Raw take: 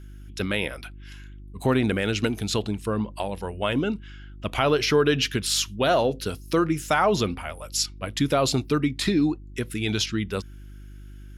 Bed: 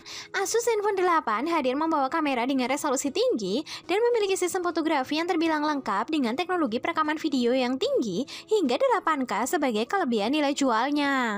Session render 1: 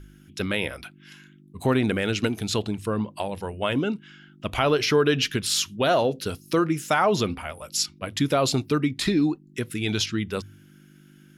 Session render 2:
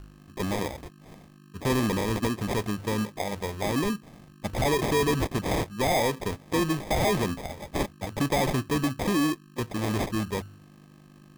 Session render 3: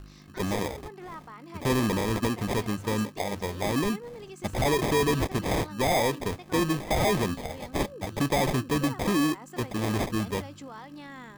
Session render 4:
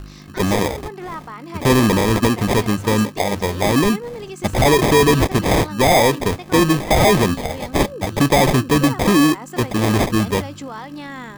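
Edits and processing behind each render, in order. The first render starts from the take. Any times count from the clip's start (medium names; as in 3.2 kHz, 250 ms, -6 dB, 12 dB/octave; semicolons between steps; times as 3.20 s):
de-hum 50 Hz, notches 2
sample-and-hold 31×; saturation -19 dBFS, distortion -13 dB
add bed -19.5 dB
trim +11 dB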